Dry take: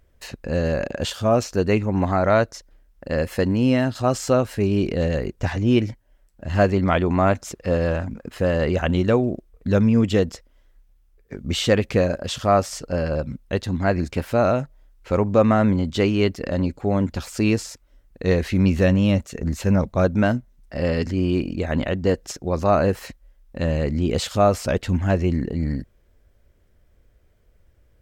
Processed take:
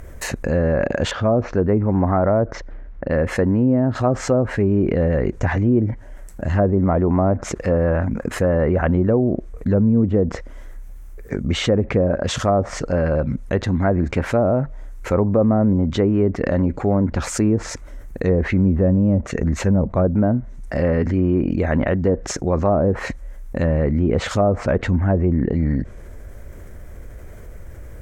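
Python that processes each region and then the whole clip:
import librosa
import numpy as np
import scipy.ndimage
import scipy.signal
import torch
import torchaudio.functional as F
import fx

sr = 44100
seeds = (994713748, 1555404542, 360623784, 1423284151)

y = fx.chain(x, sr, fx.air_absorb(metres=140.0),
    fx.env_lowpass(base_hz=2700.0, full_db=-18.5), at=(1.11, 3.27))
y = fx.env_lowpass_down(y, sr, base_hz=650.0, full_db=-14.0)
y = fx.band_shelf(y, sr, hz=3700.0, db=-8.5, octaves=1.2)
y = fx.env_flatten(y, sr, amount_pct=50)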